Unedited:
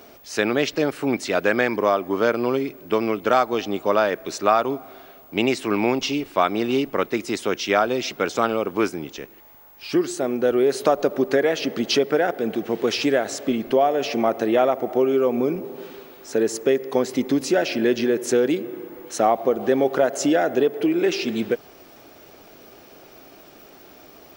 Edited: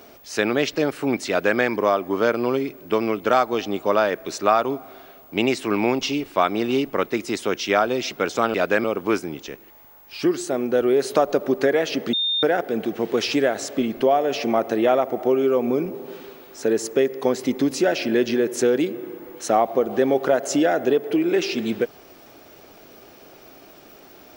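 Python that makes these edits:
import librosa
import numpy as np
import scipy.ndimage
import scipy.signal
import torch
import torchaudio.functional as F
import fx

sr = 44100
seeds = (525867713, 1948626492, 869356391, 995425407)

y = fx.edit(x, sr, fx.duplicate(start_s=1.28, length_s=0.3, to_s=8.54),
    fx.bleep(start_s=11.83, length_s=0.3, hz=3640.0, db=-19.5), tone=tone)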